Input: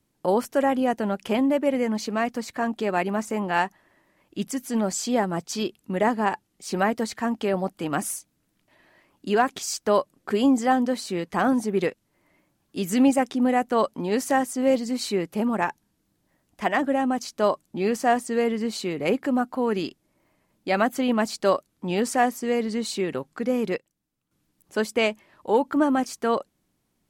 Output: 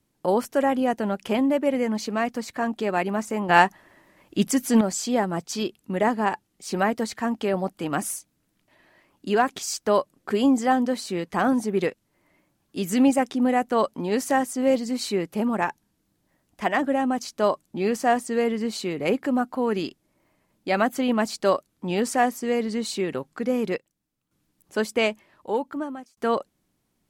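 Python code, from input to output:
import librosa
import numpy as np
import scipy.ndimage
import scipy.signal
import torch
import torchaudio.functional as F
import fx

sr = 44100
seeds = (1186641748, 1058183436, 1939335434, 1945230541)

y = fx.edit(x, sr, fx.clip_gain(start_s=3.49, length_s=1.32, db=7.0),
    fx.fade_out_span(start_s=25.11, length_s=1.06), tone=tone)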